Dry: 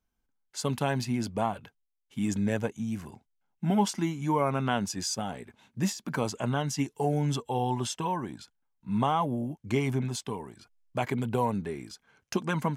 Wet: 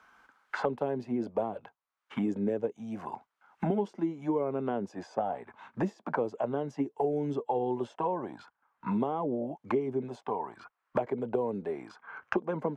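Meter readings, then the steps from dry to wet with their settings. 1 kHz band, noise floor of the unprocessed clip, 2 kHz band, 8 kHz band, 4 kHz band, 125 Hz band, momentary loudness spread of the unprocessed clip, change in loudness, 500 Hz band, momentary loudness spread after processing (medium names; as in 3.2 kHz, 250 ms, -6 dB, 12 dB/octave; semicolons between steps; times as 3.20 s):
-3.5 dB, -79 dBFS, -4.5 dB, under -25 dB, under -15 dB, -9.5 dB, 14 LU, -3.0 dB, +2.0 dB, 10 LU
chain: auto-wah 400–1300 Hz, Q 2.5, down, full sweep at -24 dBFS; three bands compressed up and down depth 100%; trim +5 dB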